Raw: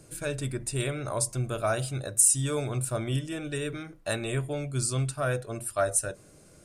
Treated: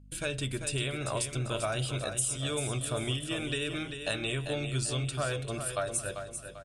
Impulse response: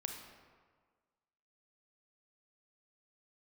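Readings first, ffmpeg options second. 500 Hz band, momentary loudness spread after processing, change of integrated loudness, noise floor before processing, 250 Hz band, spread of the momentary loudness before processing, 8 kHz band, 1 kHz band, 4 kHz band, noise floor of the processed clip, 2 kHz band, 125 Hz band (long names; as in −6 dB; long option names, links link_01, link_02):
−3.5 dB, 4 LU, −4.0 dB, −55 dBFS, −2.5 dB, 12 LU, −7.0 dB, −3.0 dB, +5.0 dB, −45 dBFS, +0.5 dB, −3.5 dB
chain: -af "lowpass=frequency=11000:width=0.5412,lowpass=frequency=11000:width=1.3066,agate=range=-33dB:threshold=-47dB:ratio=16:detection=peak,equalizer=frequency=3100:width=1.8:gain=12,acompressor=threshold=-29dB:ratio=6,aeval=exprs='val(0)+0.00251*(sin(2*PI*50*n/s)+sin(2*PI*2*50*n/s)/2+sin(2*PI*3*50*n/s)/3+sin(2*PI*4*50*n/s)/4+sin(2*PI*5*50*n/s)/5)':channel_layout=same,aecho=1:1:393|786|1179|1572:0.398|0.155|0.0606|0.0236"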